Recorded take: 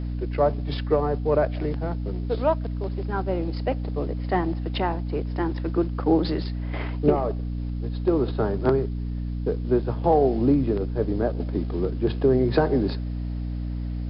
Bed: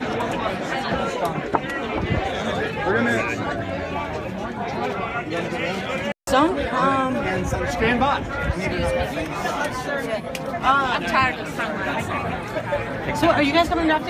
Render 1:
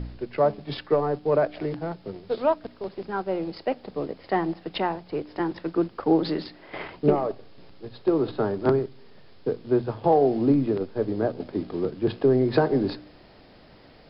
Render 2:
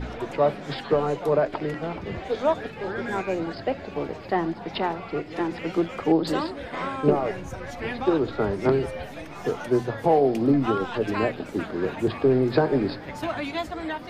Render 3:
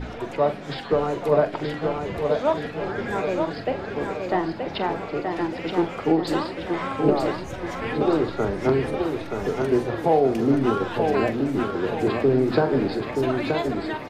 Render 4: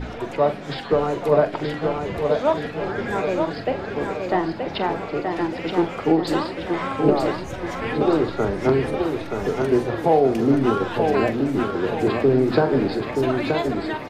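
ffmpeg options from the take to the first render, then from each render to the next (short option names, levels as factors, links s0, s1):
-af "bandreject=f=60:t=h:w=4,bandreject=f=120:t=h:w=4,bandreject=f=180:t=h:w=4,bandreject=f=240:t=h:w=4,bandreject=f=300:t=h:w=4"
-filter_complex "[1:a]volume=0.251[s0];[0:a][s0]amix=inputs=2:normalize=0"
-filter_complex "[0:a]asplit=2[s0][s1];[s1]adelay=44,volume=0.266[s2];[s0][s2]amix=inputs=2:normalize=0,aecho=1:1:926|1852|2778|3704|4630:0.562|0.247|0.109|0.0479|0.0211"
-af "volume=1.26"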